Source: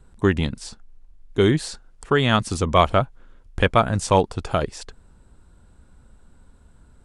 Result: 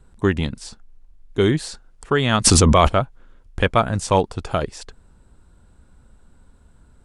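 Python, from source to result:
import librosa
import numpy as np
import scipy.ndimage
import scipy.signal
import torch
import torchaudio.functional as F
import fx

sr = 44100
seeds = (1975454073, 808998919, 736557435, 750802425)

y = fx.env_flatten(x, sr, amount_pct=100, at=(2.44, 2.87), fade=0.02)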